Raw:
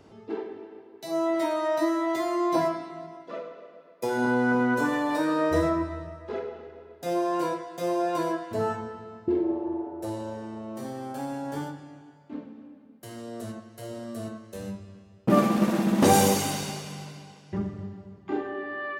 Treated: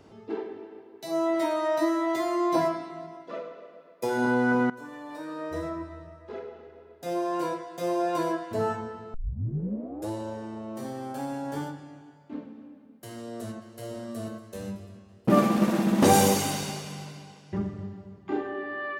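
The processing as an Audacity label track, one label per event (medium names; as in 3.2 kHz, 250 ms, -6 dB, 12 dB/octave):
4.700000	8.170000	fade in, from -19.5 dB
9.140000	9.140000	tape start 0.95 s
13.120000	13.890000	echo throw 490 ms, feedback 65%, level -14 dB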